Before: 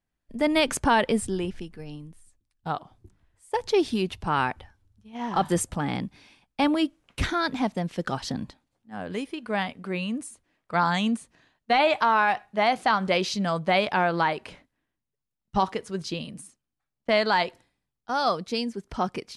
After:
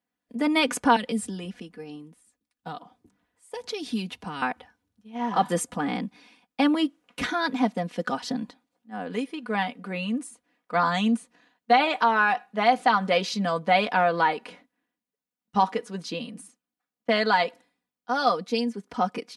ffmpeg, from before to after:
-filter_complex "[0:a]asettb=1/sr,asplit=3[a][b][c];[a]atrim=end=0.964[d];[b]atrim=start=0.96:end=4.42,asetpts=PTS-STARTPTS,afade=t=in:d=0.004:c=qsin,afade=t=out:st=3.456:d=0.004:c=qsin,acrossover=split=220|3000[e][f][g];[f]acompressor=threshold=-34dB:ratio=6:attack=3.2:release=140:knee=2.83:detection=peak[h];[e][h][g]amix=inputs=3:normalize=0[i];[c]atrim=start=4.416[j];[d][i]acrossfade=d=0.004:c1=hsin:c2=qsin[k];[k][j]acrossfade=d=0.004:c1=qsin:c2=hsin,highpass=190,equalizer=f=7.8k:w=0.4:g=-3.5,aecho=1:1:4.1:0.69"

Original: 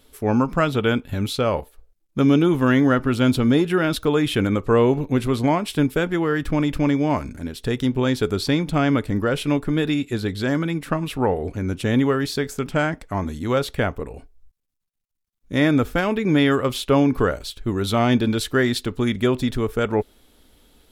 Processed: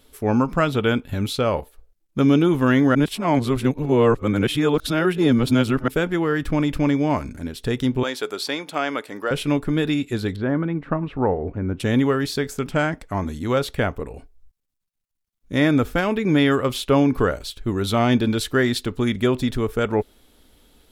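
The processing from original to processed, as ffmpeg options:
-filter_complex "[0:a]asettb=1/sr,asplit=3[a][b][c];[a]atrim=end=8.034[d];[b]atrim=start=8.03:end=9.31,asetpts=PTS-STARTPTS,afade=t=in:d=0.004:c=qsin,afade=t=out:st=1.276:d=0.004:c=qsin,highpass=510[e];[c]atrim=start=9.306[f];[d][e]acrossfade=d=0.004:c1=hsin:c2=qsin[g];[g][f]acrossfade=d=0.004:c1=qsin:c2=hsin,asettb=1/sr,asplit=3[h][i][j];[h]atrim=end=10.364[k];[i]atrim=start=10.36:end=11.8,asetpts=PTS-STARTPTS,afade=t=in:d=0.004:c=qsin,afade=t=out:st=1.436:d=0.004:c=qsin,lowpass=1.5k[l];[j]atrim=start=11.796[m];[k][l]acrossfade=d=0.004:c1=hsin:c2=qsin[n];[n][m]acrossfade=d=0.004:c1=qsin:c2=hsin,asplit=3[o][p][q];[o]atrim=end=2.952[r];[p]atrim=start=2.948:end=5.882,asetpts=PTS-STARTPTS,areverse[s];[q]atrim=start=5.878[t];[r][s]acrossfade=d=0.004:c1=hsin:c2=hsin[u];[u][t]acrossfade=d=0.004:c1=hsin:c2=hsin"

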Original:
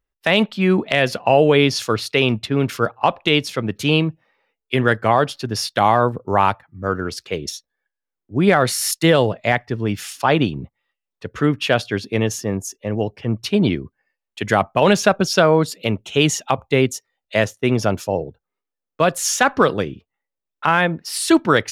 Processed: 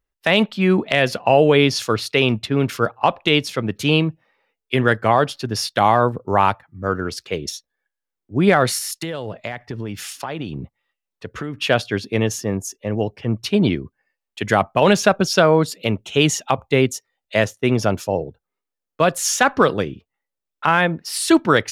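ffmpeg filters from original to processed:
-filter_complex "[0:a]asettb=1/sr,asplit=3[a][b][c];[a]atrim=end=8.784[d];[b]atrim=start=8.78:end=11.6,asetpts=PTS-STARTPTS,afade=t=in:d=0.004:c=qsin,afade=t=out:st=2.816:d=0.004:c=qsin,acompressor=threshold=-23dB:ratio=10:attack=3.2:release=140:knee=1:detection=peak[e];[c]atrim=start=11.596[f];[d][e]acrossfade=d=0.004:c1=hsin:c2=qsin[g];[g][f]acrossfade=d=0.004:c1=qsin:c2=hsin"

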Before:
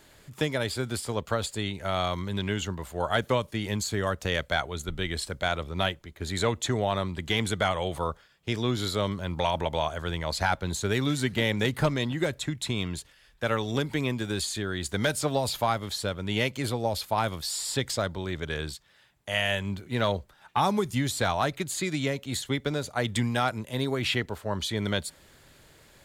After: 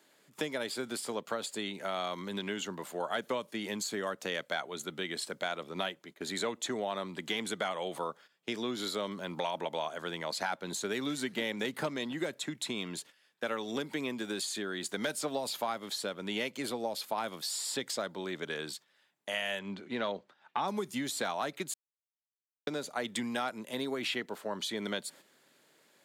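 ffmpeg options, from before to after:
-filter_complex "[0:a]asettb=1/sr,asplit=3[a][b][c];[a]atrim=end=19.594[d];[b]atrim=start=19.59:end=20.68,asetpts=PTS-STARTPTS,afade=t=in:d=0.004:c=qsin,afade=t=out:st=1.086:d=0.004:c=qsin,lowpass=4.6k[e];[c]atrim=start=20.676[f];[d][e]acrossfade=d=0.004:c1=hsin:c2=qsin[g];[g][f]acrossfade=d=0.004:c1=qsin:c2=hsin,asplit=3[h][i][j];[h]atrim=end=21.74,asetpts=PTS-STARTPTS,afade=t=out:st=21.736:d=0.004:c=hsin[k];[i]atrim=start=21.74:end=22.67,asetpts=PTS-STARTPTS,volume=0[l];[j]atrim=start=22.67,asetpts=PTS-STARTPTS,afade=t=in:d=0.004:c=hsin[m];[k][l][m]concat=n=3:v=0:a=1,highpass=f=200:w=0.5412,highpass=f=200:w=1.3066,agate=range=-9dB:threshold=-49dB:ratio=16:detection=peak,acompressor=threshold=-36dB:ratio=2"

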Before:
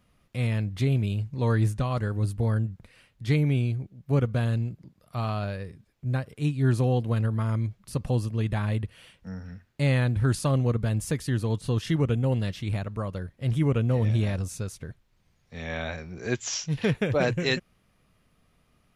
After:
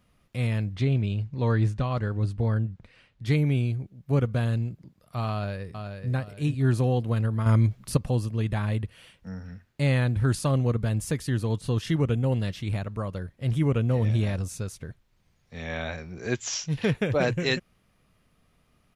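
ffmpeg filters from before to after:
-filter_complex "[0:a]asettb=1/sr,asplit=3[a][b][c];[a]atrim=end=0.754[d];[b]atrim=start=0.75:end=3.26,asetpts=PTS-STARTPTS,afade=t=in:d=0.004:c=qsin,afade=t=out:st=2.506:d=0.004:c=qsin,lowpass=5.3k[e];[c]atrim=start=3.256[f];[d][e]acrossfade=d=0.004:c1=hsin:c2=qsin[g];[g][f]acrossfade=d=0.004:c1=qsin:c2=hsin,asplit=2[h][i];[i]afade=t=in:st=5.31:d=0.01,afade=t=out:st=6.11:d=0.01,aecho=0:1:430|860|1290|1720:0.501187|0.175416|0.0613954|0.0214884[j];[h][j]amix=inputs=2:normalize=0,asettb=1/sr,asplit=3[k][l][m];[k]atrim=end=7.464[n];[l]atrim=start=7.46:end=7.97,asetpts=PTS-STARTPTS,afade=t=in:d=0.004:c=qsin,afade=t=out:st=0.506:d=0.004:c=qsin,acontrast=86[o];[m]atrim=start=7.966[p];[n][o]acrossfade=d=0.004:c1=hsin:c2=qsin[q];[q][p]acrossfade=d=0.004:c1=qsin:c2=hsin"

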